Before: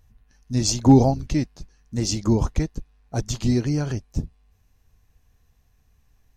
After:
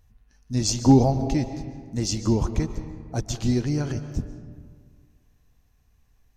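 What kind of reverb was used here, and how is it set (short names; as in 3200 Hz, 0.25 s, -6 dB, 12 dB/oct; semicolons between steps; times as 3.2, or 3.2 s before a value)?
digital reverb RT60 1.8 s, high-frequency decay 0.5×, pre-delay 0.1 s, DRR 10 dB; gain -2 dB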